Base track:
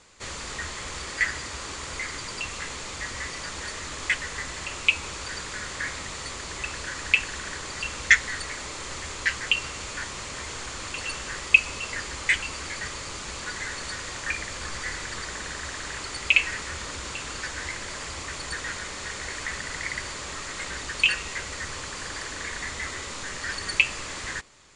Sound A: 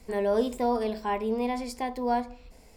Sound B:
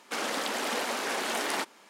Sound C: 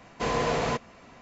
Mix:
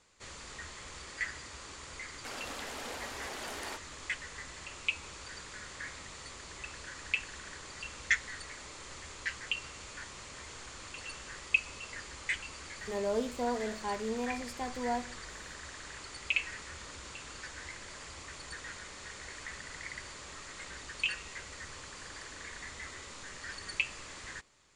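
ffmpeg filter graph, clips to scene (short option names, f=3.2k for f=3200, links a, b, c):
-filter_complex "[0:a]volume=-11.5dB[a];[2:a]atrim=end=1.89,asetpts=PTS-STARTPTS,volume=-11.5dB,afade=t=in:d=0.004:c=hsin,afade=t=out:st=1.886:d=0.004:c=hsin,adelay=2130[b];[1:a]atrim=end=2.76,asetpts=PTS-STARTPTS,volume=-7dB,afade=t=in:d=0.004:c=hsin,afade=t=out:st=2.756:d=0.004:c=hsin,adelay=12790[c];[a][b][c]amix=inputs=3:normalize=0"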